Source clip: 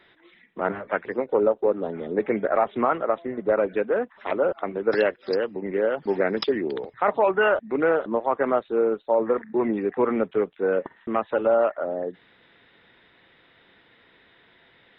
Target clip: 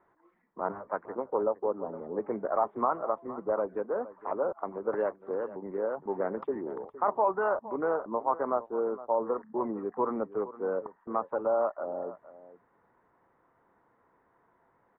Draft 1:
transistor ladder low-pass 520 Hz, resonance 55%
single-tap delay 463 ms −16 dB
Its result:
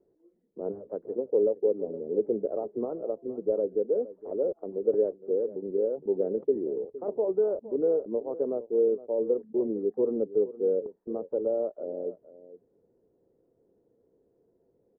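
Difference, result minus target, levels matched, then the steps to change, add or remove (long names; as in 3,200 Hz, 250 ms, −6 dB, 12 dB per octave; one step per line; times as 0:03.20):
1,000 Hz band −20.0 dB
change: transistor ladder low-pass 1,200 Hz, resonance 55%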